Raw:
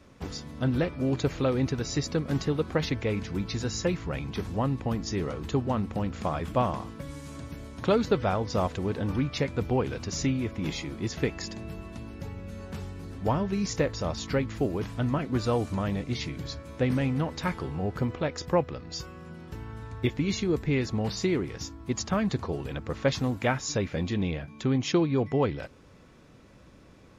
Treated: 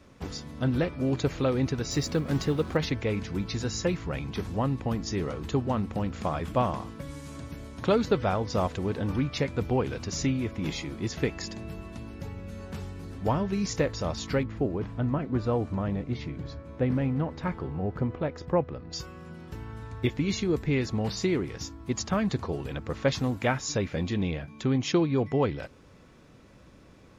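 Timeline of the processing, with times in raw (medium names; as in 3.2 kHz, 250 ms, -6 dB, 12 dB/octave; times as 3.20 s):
1.91–2.77 s: companding laws mixed up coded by mu
14.43–18.93 s: low-pass 1.2 kHz 6 dB/octave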